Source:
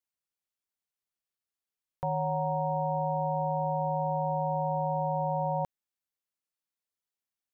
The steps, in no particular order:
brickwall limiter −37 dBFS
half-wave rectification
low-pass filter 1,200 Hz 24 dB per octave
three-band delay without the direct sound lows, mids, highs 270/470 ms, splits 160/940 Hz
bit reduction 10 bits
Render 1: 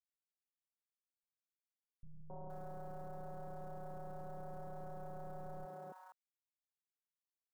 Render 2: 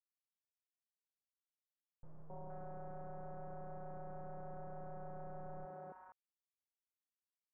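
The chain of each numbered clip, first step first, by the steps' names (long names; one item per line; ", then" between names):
half-wave rectification, then low-pass filter, then bit reduction, then brickwall limiter, then three-band delay without the direct sound
half-wave rectification, then brickwall limiter, then three-band delay without the direct sound, then bit reduction, then low-pass filter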